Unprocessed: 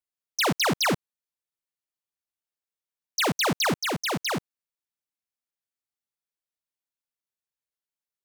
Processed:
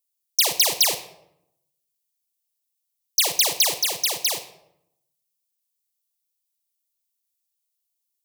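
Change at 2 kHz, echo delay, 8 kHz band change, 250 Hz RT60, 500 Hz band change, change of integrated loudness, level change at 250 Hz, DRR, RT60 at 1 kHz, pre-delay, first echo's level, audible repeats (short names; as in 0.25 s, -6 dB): -2.5 dB, none, +11.0 dB, 1.0 s, -4.0 dB, +5.5 dB, -17.0 dB, 9.0 dB, 0.75 s, 33 ms, none, none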